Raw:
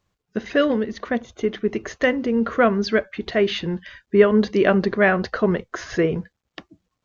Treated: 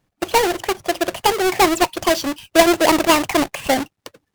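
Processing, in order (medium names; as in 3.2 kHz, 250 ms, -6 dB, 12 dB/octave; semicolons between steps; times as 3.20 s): square wave that keeps the level; wide varispeed 1.62×; trim -1 dB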